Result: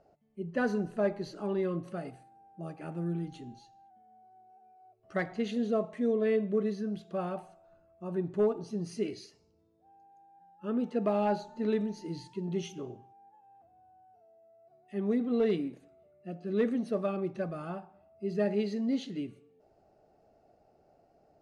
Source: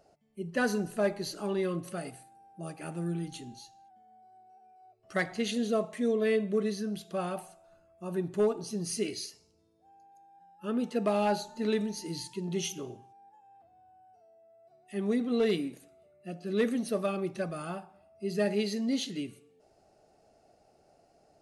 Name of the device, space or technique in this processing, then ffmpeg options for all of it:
through cloth: -af "lowpass=7.6k,highshelf=f=2.5k:g=-13.5"

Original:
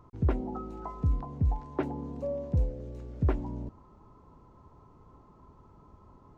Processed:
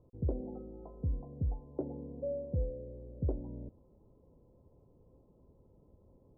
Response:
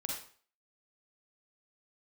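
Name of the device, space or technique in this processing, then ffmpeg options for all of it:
under water: -af "lowpass=f=650:w=0.5412,lowpass=f=650:w=1.3066,equalizer=f=520:t=o:w=0.28:g=9.5,volume=-7dB"

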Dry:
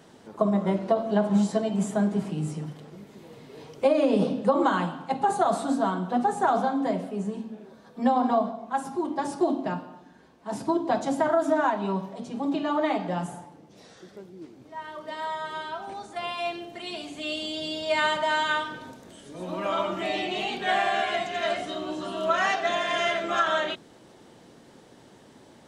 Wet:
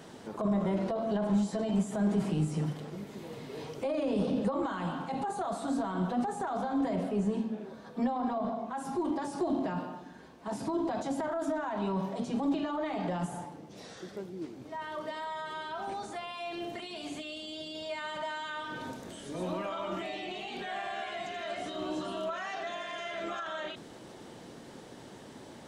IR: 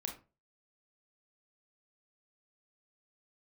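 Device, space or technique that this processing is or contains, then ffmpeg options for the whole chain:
de-esser from a sidechain: -filter_complex "[0:a]asplit=2[a][b];[b]highpass=f=4.1k:p=1,apad=whole_len=1132083[c];[a][c]sidechaincompress=threshold=-50dB:ratio=5:attack=0.79:release=22,asettb=1/sr,asplit=3[d][e][f];[d]atrim=end=6.954[g];[e]atrim=start=6.95:end=8.8,asetpts=PTS-STARTPTS,afade=t=in:d=0.004:c=qsin,afade=t=out:st=1.846:d=0.004:c=qsin,highshelf=f=5.6k:g=-5[h];[f]atrim=start=8.796[i];[g][h]acrossfade=d=0.004:c1=hsin:c2=qsin[j];[j][i]acrossfade=d=0.004:c1=qsin:c2=hsin,volume=3.5dB"

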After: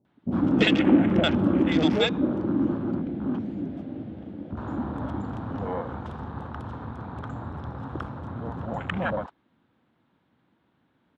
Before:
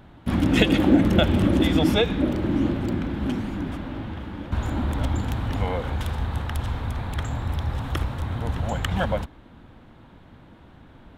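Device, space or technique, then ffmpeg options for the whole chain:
over-cleaned archive recording: -filter_complex "[0:a]highpass=160,lowpass=5.8k,afwtdn=0.0224,asettb=1/sr,asplit=3[a][b][c];[a]atrim=end=2.794[d];[b]atrim=start=2.79:end=3.35,asetpts=PTS-STARTPTS,afade=t=in:d=0.004:c=qsin,afade=t=out:st=0.556:d=0.004:c=qsin,lowpass=5.2k[e];[c]atrim=start=3.346[f];[d][e]acrossfade=d=0.004:c1=hsin:c2=qsin[g];[g][f]acrossfade=d=0.004:c1=qsin:c2=hsin,acrossover=split=620[h][i];[i]adelay=50[j];[h][j]amix=inputs=2:normalize=0"

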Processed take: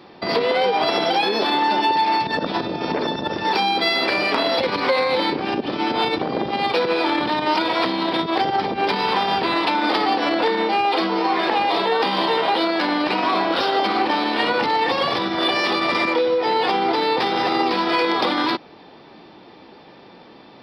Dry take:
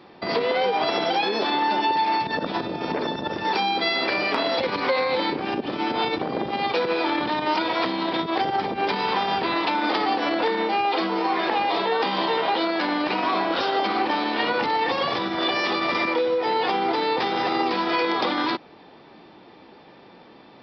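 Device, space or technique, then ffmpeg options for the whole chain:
exciter from parts: -filter_complex "[0:a]asplit=2[a][b];[b]highpass=2.8k,asoftclip=type=tanh:threshold=-30.5dB,volume=-8dB[c];[a][c]amix=inputs=2:normalize=0,volume=3.5dB"

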